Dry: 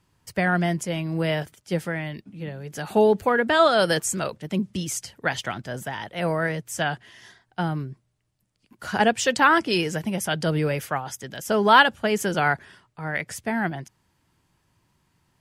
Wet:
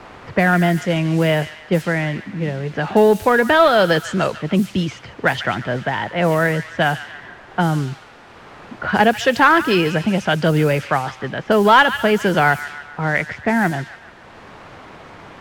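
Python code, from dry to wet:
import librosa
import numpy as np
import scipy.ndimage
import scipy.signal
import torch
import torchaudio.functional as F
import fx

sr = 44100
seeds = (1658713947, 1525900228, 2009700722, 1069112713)

p1 = scipy.signal.sosfilt(scipy.signal.butter(2, 3400.0, 'lowpass', fs=sr, output='sos'), x)
p2 = p1 + fx.echo_wet_highpass(p1, sr, ms=144, feedback_pct=50, hz=1500.0, wet_db=-12.0, dry=0)
p3 = fx.quant_dither(p2, sr, seeds[0], bits=8, dither='triangular')
p4 = 10.0 ** (-16.0 / 20.0) * np.tanh(p3 / 10.0 ** (-16.0 / 20.0))
p5 = p3 + F.gain(torch.from_numpy(p4), -3.0).numpy()
p6 = fx.env_lowpass(p5, sr, base_hz=1200.0, full_db=-16.0)
p7 = fx.band_squash(p6, sr, depth_pct=40)
y = F.gain(torch.from_numpy(p7), 3.5).numpy()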